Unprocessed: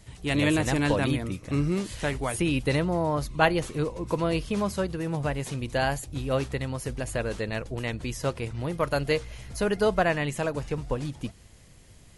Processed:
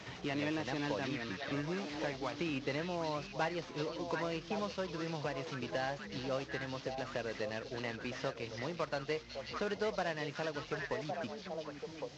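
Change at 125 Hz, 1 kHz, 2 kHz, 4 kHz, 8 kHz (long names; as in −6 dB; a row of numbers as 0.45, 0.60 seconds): −15.5, −9.5, −9.0, −7.5, −15.0 decibels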